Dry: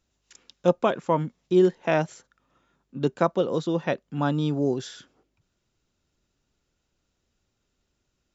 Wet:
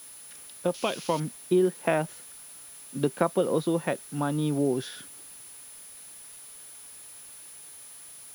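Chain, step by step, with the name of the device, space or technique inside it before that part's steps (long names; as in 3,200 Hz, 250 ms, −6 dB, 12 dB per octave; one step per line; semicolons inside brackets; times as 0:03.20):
medium wave at night (band-pass filter 120–3,900 Hz; downward compressor, threshold −22 dBFS, peak gain reduction 9 dB; amplitude tremolo 0.6 Hz, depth 38%; steady tone 10,000 Hz −48 dBFS; white noise bed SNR 21 dB)
0:00.74–0:01.20: flat-topped bell 4,000 Hz +13.5 dB
level +3 dB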